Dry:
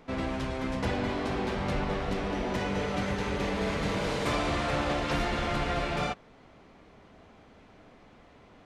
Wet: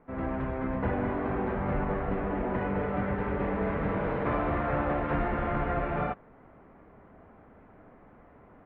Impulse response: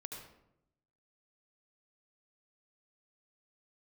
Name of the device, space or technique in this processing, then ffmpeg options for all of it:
action camera in a waterproof case: -af "lowpass=f=1.8k:w=0.5412,lowpass=f=1.8k:w=1.3066,dynaudnorm=f=120:g=3:m=6.5dB,volume=-5.5dB" -ar 44100 -c:a aac -b:a 48k

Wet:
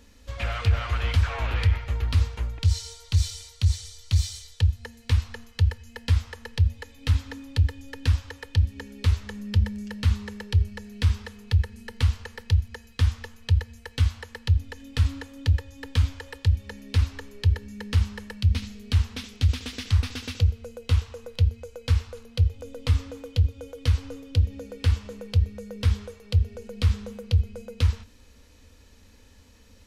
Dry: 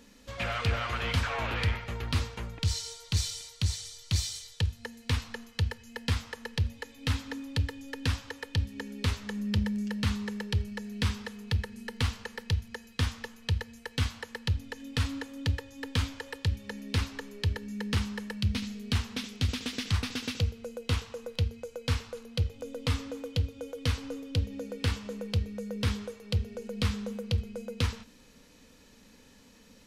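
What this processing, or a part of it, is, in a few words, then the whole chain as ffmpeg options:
car stereo with a boomy subwoofer: -af "lowshelf=f=110:t=q:w=3:g=8.5,alimiter=limit=-12dB:level=0:latency=1:release=62"

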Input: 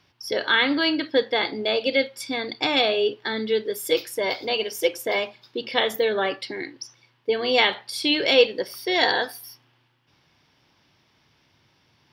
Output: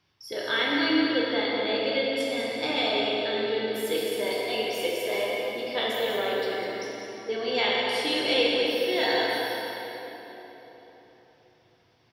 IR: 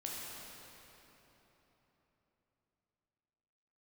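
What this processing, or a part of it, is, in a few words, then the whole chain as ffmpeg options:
cave: -filter_complex "[0:a]aecho=1:1:201:0.376[a];[1:a]atrim=start_sample=2205[b];[a][b]afir=irnorm=-1:irlink=0,volume=-4.5dB"

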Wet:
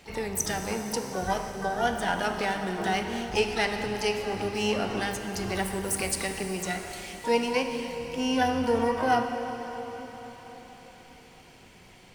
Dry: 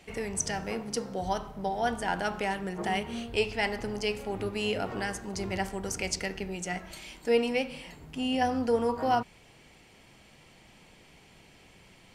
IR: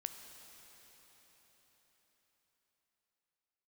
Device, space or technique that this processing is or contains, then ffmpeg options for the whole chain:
shimmer-style reverb: -filter_complex "[0:a]asettb=1/sr,asplit=3[a][b][c];[a]atrim=end=5.554[d];[b]atrim=start=5.55:end=6.16,asetpts=PTS-STARTPTS,afade=t=in:d=0.004:c=qsin,afade=t=out:st=0.606:d=0.004:c=qsin,highshelf=f=7.8k:t=q:w=3:g=7.5[e];[c]atrim=start=6.156[f];[d][e]acrossfade=d=0.004:c1=hsin:c2=qsin[g];[g][f]acrossfade=d=0.004:c1=qsin:c2=hsin,asplit=2[h][i];[i]asetrate=88200,aresample=44100,atempo=0.5,volume=-9dB[j];[h][j]amix=inputs=2:normalize=0[k];[1:a]atrim=start_sample=2205[l];[k][l]afir=irnorm=-1:irlink=0,volume=4.5dB"

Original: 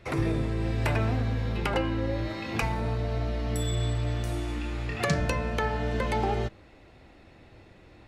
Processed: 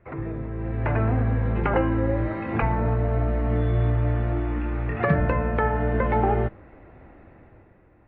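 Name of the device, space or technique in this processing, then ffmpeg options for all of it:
action camera in a waterproof case: -af "lowpass=f=1.9k:w=0.5412,lowpass=f=1.9k:w=1.3066,dynaudnorm=f=130:g=13:m=11dB,volume=-4.5dB" -ar 48000 -c:a aac -b:a 48k

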